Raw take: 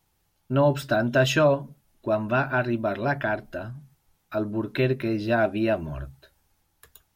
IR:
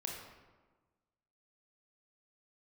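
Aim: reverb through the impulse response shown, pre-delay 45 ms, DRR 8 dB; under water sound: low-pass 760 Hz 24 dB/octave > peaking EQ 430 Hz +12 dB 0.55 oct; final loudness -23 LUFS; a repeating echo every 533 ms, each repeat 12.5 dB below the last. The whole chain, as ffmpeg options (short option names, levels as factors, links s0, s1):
-filter_complex "[0:a]aecho=1:1:533|1066|1599:0.237|0.0569|0.0137,asplit=2[s0][s1];[1:a]atrim=start_sample=2205,adelay=45[s2];[s1][s2]afir=irnorm=-1:irlink=0,volume=0.398[s3];[s0][s3]amix=inputs=2:normalize=0,lowpass=f=760:w=0.5412,lowpass=f=760:w=1.3066,equalizer=f=430:t=o:w=0.55:g=12,volume=0.841"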